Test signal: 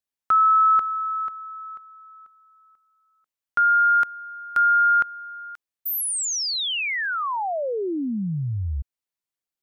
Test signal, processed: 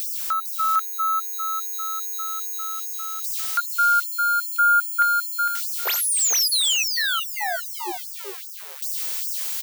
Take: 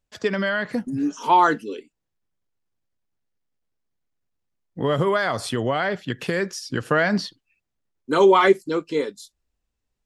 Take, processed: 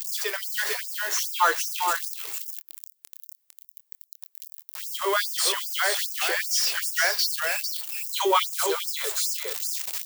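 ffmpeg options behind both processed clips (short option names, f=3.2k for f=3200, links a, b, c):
-filter_complex "[0:a]aeval=exprs='val(0)+0.5*0.0447*sgn(val(0))':c=same,aemphasis=mode=production:type=riaa,asoftclip=type=tanh:threshold=-8dB,asplit=2[a][b];[b]adelay=25,volume=-12dB[c];[a][c]amix=inputs=2:normalize=0,asplit=2[d][e];[e]aecho=0:1:454:0.501[f];[d][f]amix=inputs=2:normalize=0,dynaudnorm=f=410:g=3:m=6dB,lowshelf=f=380:g=-3.5,acrossover=split=7500[g][h];[h]acompressor=threshold=-22dB:ratio=4:attack=1:release=60[i];[g][i]amix=inputs=2:normalize=0,afftfilt=real='re*gte(b*sr/1024,320*pow(5000/320,0.5+0.5*sin(2*PI*2.5*pts/sr)))':imag='im*gte(b*sr/1024,320*pow(5000/320,0.5+0.5*sin(2*PI*2.5*pts/sr)))':win_size=1024:overlap=0.75,volume=-5dB"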